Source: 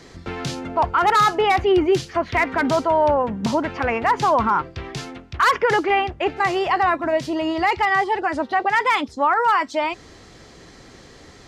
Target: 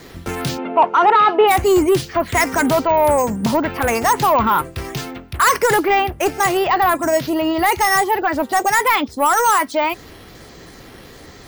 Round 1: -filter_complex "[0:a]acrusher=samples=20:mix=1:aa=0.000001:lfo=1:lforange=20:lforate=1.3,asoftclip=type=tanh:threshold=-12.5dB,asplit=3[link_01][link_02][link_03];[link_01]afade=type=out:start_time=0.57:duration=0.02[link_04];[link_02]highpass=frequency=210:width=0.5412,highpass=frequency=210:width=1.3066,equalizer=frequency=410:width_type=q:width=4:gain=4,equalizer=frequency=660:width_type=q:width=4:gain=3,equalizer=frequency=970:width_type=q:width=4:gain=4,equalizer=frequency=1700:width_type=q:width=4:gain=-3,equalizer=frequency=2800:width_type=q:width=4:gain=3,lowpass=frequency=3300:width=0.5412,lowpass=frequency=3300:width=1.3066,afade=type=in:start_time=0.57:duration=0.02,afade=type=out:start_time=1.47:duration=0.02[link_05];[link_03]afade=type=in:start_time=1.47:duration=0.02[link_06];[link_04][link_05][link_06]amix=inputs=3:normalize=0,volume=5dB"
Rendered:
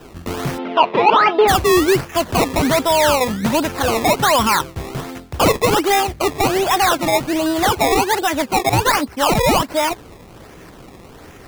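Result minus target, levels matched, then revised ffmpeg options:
sample-and-hold swept by an LFO: distortion +17 dB
-filter_complex "[0:a]acrusher=samples=4:mix=1:aa=0.000001:lfo=1:lforange=4:lforate=1.3,asoftclip=type=tanh:threshold=-12.5dB,asplit=3[link_01][link_02][link_03];[link_01]afade=type=out:start_time=0.57:duration=0.02[link_04];[link_02]highpass=frequency=210:width=0.5412,highpass=frequency=210:width=1.3066,equalizer=frequency=410:width_type=q:width=4:gain=4,equalizer=frequency=660:width_type=q:width=4:gain=3,equalizer=frequency=970:width_type=q:width=4:gain=4,equalizer=frequency=1700:width_type=q:width=4:gain=-3,equalizer=frequency=2800:width_type=q:width=4:gain=3,lowpass=frequency=3300:width=0.5412,lowpass=frequency=3300:width=1.3066,afade=type=in:start_time=0.57:duration=0.02,afade=type=out:start_time=1.47:duration=0.02[link_05];[link_03]afade=type=in:start_time=1.47:duration=0.02[link_06];[link_04][link_05][link_06]amix=inputs=3:normalize=0,volume=5dB"

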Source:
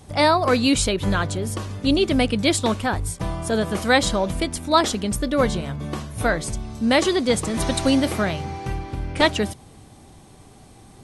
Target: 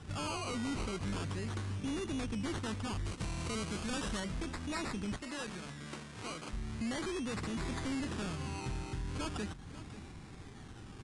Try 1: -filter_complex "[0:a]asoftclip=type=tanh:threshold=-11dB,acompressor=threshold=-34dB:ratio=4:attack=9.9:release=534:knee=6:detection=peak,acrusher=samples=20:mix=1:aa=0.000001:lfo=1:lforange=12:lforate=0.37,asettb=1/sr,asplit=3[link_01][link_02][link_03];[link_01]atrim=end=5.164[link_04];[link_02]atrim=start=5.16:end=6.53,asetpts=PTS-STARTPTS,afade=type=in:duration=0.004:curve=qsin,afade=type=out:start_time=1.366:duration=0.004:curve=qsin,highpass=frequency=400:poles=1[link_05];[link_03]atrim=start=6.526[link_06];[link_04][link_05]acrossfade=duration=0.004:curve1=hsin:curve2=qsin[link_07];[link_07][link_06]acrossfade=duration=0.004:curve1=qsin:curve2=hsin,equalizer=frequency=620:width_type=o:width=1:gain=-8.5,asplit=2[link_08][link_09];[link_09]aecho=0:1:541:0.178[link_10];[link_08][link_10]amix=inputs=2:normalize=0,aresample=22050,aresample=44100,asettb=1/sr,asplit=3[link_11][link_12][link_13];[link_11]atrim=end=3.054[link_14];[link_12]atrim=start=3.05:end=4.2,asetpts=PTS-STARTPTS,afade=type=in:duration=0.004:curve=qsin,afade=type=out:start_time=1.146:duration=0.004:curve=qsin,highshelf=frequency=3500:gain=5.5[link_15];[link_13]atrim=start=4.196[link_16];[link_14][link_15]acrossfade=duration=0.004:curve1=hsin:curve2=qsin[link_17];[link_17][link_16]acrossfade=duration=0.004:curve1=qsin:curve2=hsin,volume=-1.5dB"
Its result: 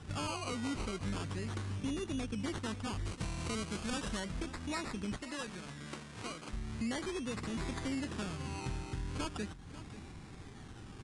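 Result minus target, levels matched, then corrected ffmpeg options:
soft clipping: distortion −11 dB
-filter_complex "[0:a]asoftclip=type=tanh:threshold=-22dB,acompressor=threshold=-34dB:ratio=4:attack=9.9:release=534:knee=6:detection=peak,acrusher=samples=20:mix=1:aa=0.000001:lfo=1:lforange=12:lforate=0.37,asettb=1/sr,asplit=3[link_01][link_02][link_03];[link_01]atrim=end=5.164[link_04];[link_02]atrim=start=5.16:end=6.53,asetpts=PTS-STARTPTS,afade=type=in:duration=0.004:curve=qsin,afade=type=out:start_time=1.366:duration=0.004:curve=qsin,highpass=frequency=400:poles=1[link_05];[link_03]atrim=start=6.526[link_06];[link_04][link_05]acrossfade=duration=0.004:curve1=hsin:curve2=qsin[link_07];[link_07][link_06]acrossfade=duration=0.004:curve1=qsin:curve2=hsin,equalizer=frequency=620:width_type=o:width=1:gain=-8.5,asplit=2[link_08][link_09];[link_09]aecho=0:1:541:0.178[link_10];[link_08][link_10]amix=inputs=2:normalize=0,aresample=22050,aresample=44100,asettb=1/sr,asplit=3[link_11][link_12][link_13];[link_11]atrim=end=3.054[link_14];[link_12]atrim=start=3.05:end=4.2,asetpts=PTS-STARTPTS,afade=type=in:duration=0.004:curve=qsin,afade=type=out:start_time=1.146:duration=0.004:curve=qsin,highshelf=frequency=3500:gain=5.5[link_15];[link_13]atrim=start=4.196[link_16];[link_14][link_15]acrossfade=duration=0.004:curve1=hsin:curve2=qsin[link_17];[link_17][link_16]acrossfade=duration=0.004:curve1=qsin:curve2=hsin,volume=-1.5dB"

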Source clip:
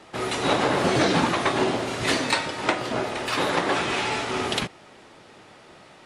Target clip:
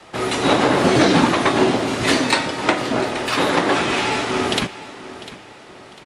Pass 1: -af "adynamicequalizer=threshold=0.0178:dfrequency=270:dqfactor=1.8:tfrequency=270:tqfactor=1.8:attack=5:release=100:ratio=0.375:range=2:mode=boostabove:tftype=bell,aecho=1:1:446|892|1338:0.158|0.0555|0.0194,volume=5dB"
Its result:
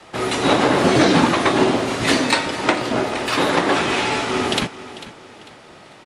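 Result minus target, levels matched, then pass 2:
echo 253 ms early
-af "adynamicequalizer=threshold=0.0178:dfrequency=270:dqfactor=1.8:tfrequency=270:tqfactor=1.8:attack=5:release=100:ratio=0.375:range=2:mode=boostabove:tftype=bell,aecho=1:1:699|1398|2097:0.158|0.0555|0.0194,volume=5dB"

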